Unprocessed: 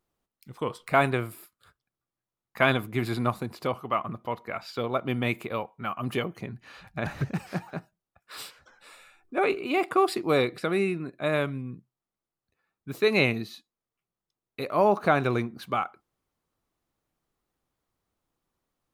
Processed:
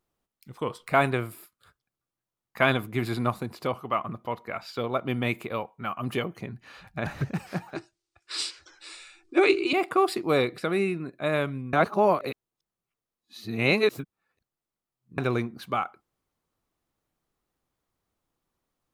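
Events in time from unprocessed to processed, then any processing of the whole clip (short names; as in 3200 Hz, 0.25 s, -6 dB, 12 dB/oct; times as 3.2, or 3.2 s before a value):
7.75–9.73 EQ curve 110 Hz 0 dB, 220 Hz -19 dB, 330 Hz +14 dB, 480 Hz -4 dB, 1500 Hz +1 dB, 2200 Hz +6 dB, 3300 Hz +8 dB, 4700 Hz +14 dB, 9100 Hz +8 dB, 15000 Hz -28 dB
11.73–15.18 reverse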